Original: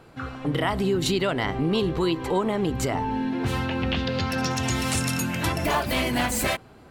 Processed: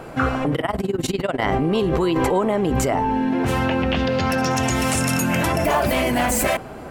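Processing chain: fifteen-band EQ 100 Hz -5 dB, 630 Hz +5 dB, 4000 Hz -7 dB; in parallel at +1.5 dB: negative-ratio compressor -31 dBFS, ratio -0.5; 0.55–1.42 on the sum: AM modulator 20 Hz, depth 85%; gain +2 dB

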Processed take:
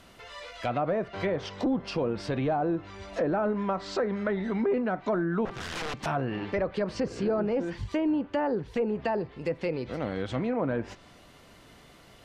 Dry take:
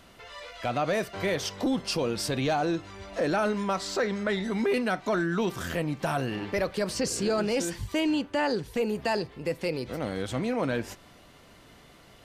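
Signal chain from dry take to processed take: 5.45–6.06 wrapped overs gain 28 dB; treble ducked by the level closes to 1100 Hz, closed at -23 dBFS

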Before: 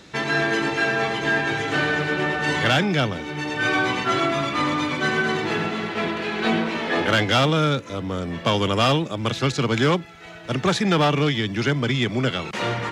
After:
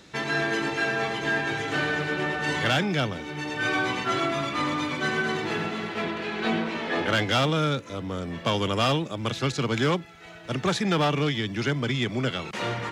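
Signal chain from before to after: high shelf 8800 Hz +4 dB, from 6.02 s -3.5 dB, from 7.15 s +3 dB; gain -4.5 dB

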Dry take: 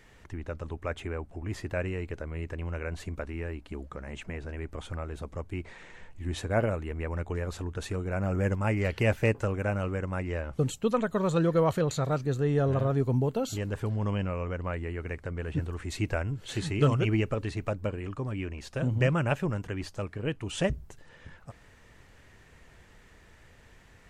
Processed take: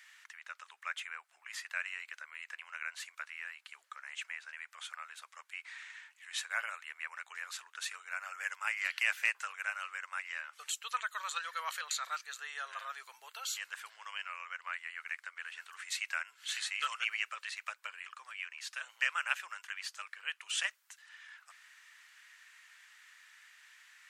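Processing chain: inverse Chebyshev high-pass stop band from 230 Hz, stop band 80 dB; gain +3 dB

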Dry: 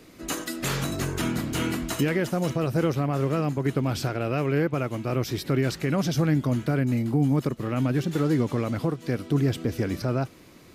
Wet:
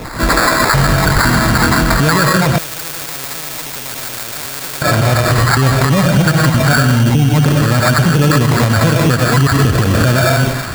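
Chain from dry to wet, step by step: random spectral dropouts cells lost 28%; resonant high shelf 2300 Hz -9.5 dB, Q 3; digital reverb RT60 0.72 s, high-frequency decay 0.35×, pre-delay 65 ms, DRR 3 dB; compressor, threshold -27 dBFS, peak gain reduction 10 dB; bell 340 Hz -13.5 dB 1.6 oct; notch 1200 Hz, Q 5.7; sample-rate reducer 3000 Hz, jitter 0%; thin delay 0.28 s, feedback 75%, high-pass 1400 Hz, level -16.5 dB; maximiser +34.5 dB; 2.58–4.82 spectral compressor 4:1; gain -3 dB

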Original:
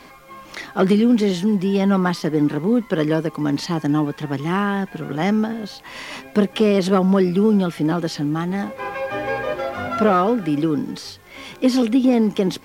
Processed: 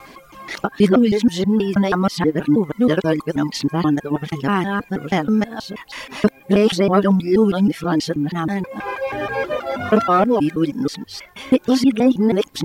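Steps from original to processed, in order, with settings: local time reversal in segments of 0.16 s; reverb removal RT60 1 s; gain +3 dB

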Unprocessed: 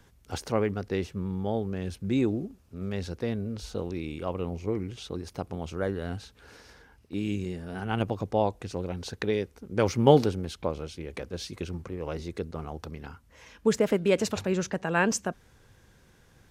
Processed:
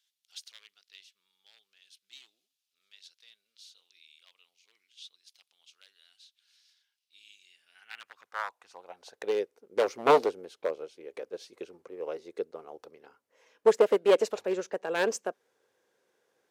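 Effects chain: one-sided fold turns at -19 dBFS; high-pass sweep 3500 Hz -> 450 Hz, 7.35–9.44; upward expander 1.5:1, over -42 dBFS

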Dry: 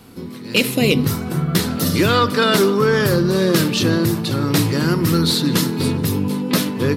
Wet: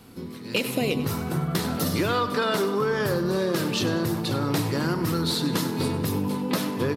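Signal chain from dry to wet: dynamic EQ 800 Hz, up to +7 dB, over -33 dBFS, Q 0.9; compressor 4:1, threshold -17 dBFS, peak gain reduction 8 dB; feedback echo 98 ms, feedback 47%, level -13.5 dB; gain -5 dB

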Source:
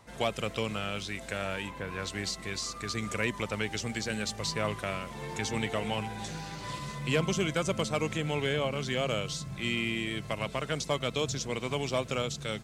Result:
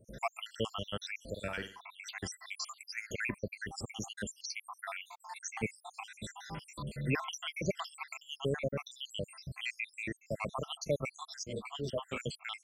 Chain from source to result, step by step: random spectral dropouts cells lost 81%; 1.31–1.8 flutter echo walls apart 8.7 m, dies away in 0.36 s; 11.16–12.2 ensemble effect

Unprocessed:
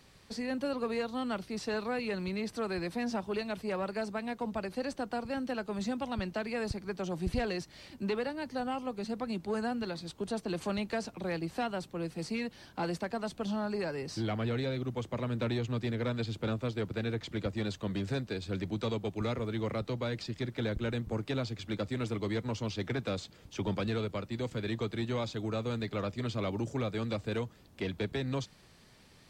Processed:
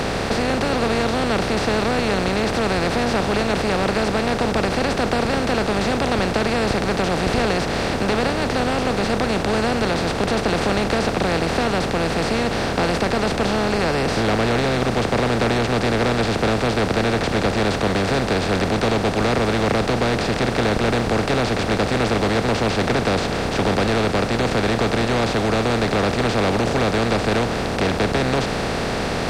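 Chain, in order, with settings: per-bin compression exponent 0.2; gain +5.5 dB

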